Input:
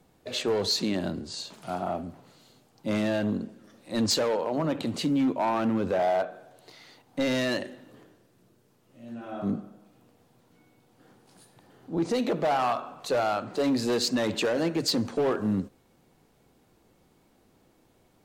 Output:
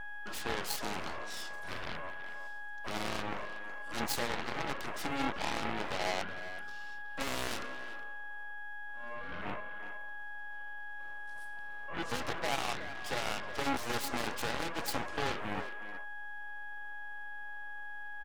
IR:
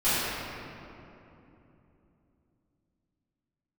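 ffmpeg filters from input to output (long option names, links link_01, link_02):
-filter_complex "[0:a]aeval=exprs='val(0)+0.0316*sin(2*PI*830*n/s)':channel_layout=same,aeval=exprs='0.158*(cos(1*acos(clip(val(0)/0.158,-1,1)))-cos(1*PI/2))+0.0631*(cos(3*acos(clip(val(0)/0.158,-1,1)))-cos(3*PI/2))+0.0224*(cos(4*acos(clip(val(0)/0.158,-1,1)))-cos(4*PI/2))+0.0447*(cos(6*acos(clip(val(0)/0.158,-1,1)))-cos(6*PI/2))+0.0501*(cos(8*acos(clip(val(0)/0.158,-1,1)))-cos(8*PI/2))':channel_layout=same,asplit=2[link_01][link_02];[link_02]adelay=370,highpass=300,lowpass=3400,asoftclip=type=hard:threshold=-24dB,volume=-9dB[link_03];[link_01][link_03]amix=inputs=2:normalize=0,volume=-7dB"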